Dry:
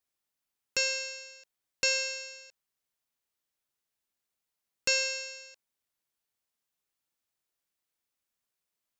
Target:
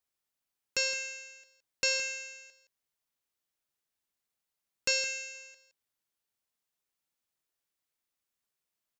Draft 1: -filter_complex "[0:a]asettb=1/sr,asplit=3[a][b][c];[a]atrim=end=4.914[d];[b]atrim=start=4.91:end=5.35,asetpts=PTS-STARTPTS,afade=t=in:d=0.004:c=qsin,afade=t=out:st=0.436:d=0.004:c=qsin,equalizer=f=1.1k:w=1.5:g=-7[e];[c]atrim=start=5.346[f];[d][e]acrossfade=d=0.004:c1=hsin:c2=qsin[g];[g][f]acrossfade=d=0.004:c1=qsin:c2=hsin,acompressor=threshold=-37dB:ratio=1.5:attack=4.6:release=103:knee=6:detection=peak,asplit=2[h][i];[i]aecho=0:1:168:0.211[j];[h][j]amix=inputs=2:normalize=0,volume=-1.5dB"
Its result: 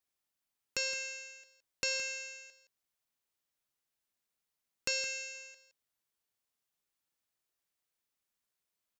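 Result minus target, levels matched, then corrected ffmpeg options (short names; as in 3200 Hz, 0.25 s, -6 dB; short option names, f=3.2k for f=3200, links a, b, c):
compressor: peak gain reduction +5.5 dB
-filter_complex "[0:a]asettb=1/sr,asplit=3[a][b][c];[a]atrim=end=4.914[d];[b]atrim=start=4.91:end=5.35,asetpts=PTS-STARTPTS,afade=t=in:d=0.004:c=qsin,afade=t=out:st=0.436:d=0.004:c=qsin,equalizer=f=1.1k:w=1.5:g=-7[e];[c]atrim=start=5.346[f];[d][e]acrossfade=d=0.004:c1=hsin:c2=qsin[g];[g][f]acrossfade=d=0.004:c1=qsin:c2=hsin,asplit=2[h][i];[i]aecho=0:1:168:0.211[j];[h][j]amix=inputs=2:normalize=0,volume=-1.5dB"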